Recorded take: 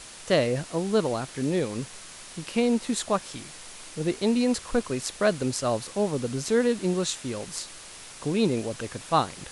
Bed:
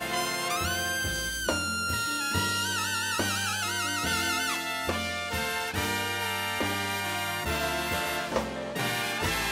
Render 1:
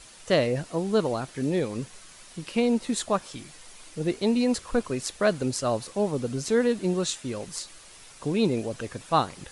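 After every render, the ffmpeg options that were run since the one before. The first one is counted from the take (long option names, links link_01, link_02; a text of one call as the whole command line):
ffmpeg -i in.wav -af "afftdn=noise_reduction=7:noise_floor=-44" out.wav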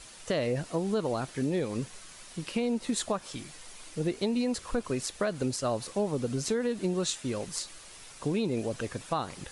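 ffmpeg -i in.wav -af "alimiter=limit=-16dB:level=0:latency=1:release=142,acompressor=threshold=-25dB:ratio=6" out.wav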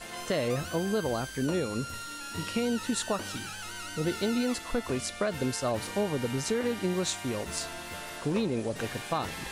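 ffmpeg -i in.wav -i bed.wav -filter_complex "[1:a]volume=-11dB[link_01];[0:a][link_01]amix=inputs=2:normalize=0" out.wav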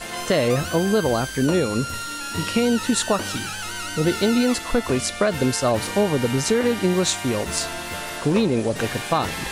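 ffmpeg -i in.wav -af "volume=9.5dB" out.wav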